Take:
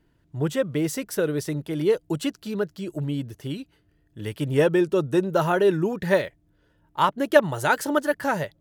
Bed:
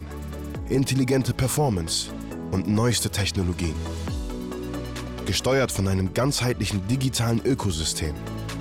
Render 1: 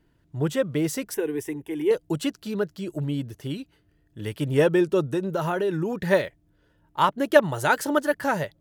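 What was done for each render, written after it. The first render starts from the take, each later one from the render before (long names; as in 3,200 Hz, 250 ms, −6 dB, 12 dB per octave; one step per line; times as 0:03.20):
0:01.14–0:01.91: phaser with its sweep stopped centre 880 Hz, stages 8
0:05.08–0:06.06: downward compressor 4 to 1, threshold −22 dBFS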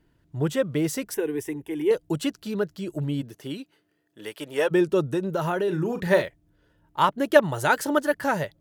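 0:03.21–0:04.70: high-pass filter 160 Hz → 570 Hz
0:05.64–0:06.23: double-tracking delay 39 ms −9 dB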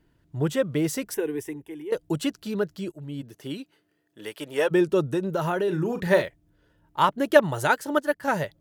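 0:00.98–0:01.92: fade out equal-power, to −15.5 dB
0:02.92–0:03.51: fade in, from −17.5 dB
0:07.67–0:08.28: expander for the loud parts, over −39 dBFS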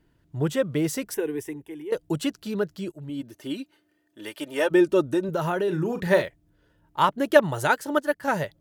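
0:03.09–0:05.29: comb filter 3.3 ms, depth 55%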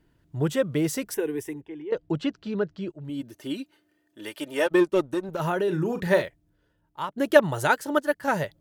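0:01.61–0:03.05: high-frequency loss of the air 180 metres
0:04.66–0:05.40: power curve on the samples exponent 1.4
0:05.97–0:07.16: fade out, to −14 dB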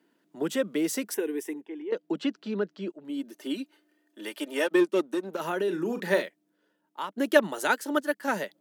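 Butterworth high-pass 200 Hz 48 dB per octave
dynamic equaliser 770 Hz, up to −5 dB, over −33 dBFS, Q 0.73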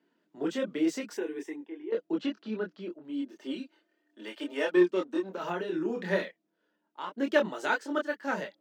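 moving average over 4 samples
multi-voice chorus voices 6, 0.38 Hz, delay 25 ms, depth 3.3 ms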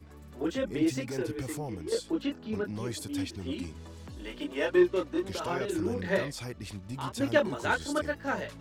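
mix in bed −15.5 dB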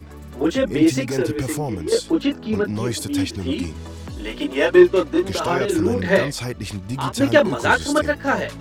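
level +11.5 dB
brickwall limiter −1 dBFS, peak gain reduction 2 dB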